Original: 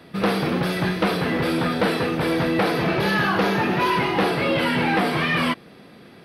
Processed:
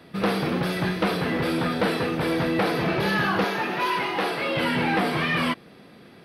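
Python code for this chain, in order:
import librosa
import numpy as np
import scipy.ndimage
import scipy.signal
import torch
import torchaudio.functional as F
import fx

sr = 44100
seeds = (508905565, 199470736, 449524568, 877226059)

y = fx.highpass(x, sr, hz=480.0, slope=6, at=(3.44, 4.57))
y = y * librosa.db_to_amplitude(-2.5)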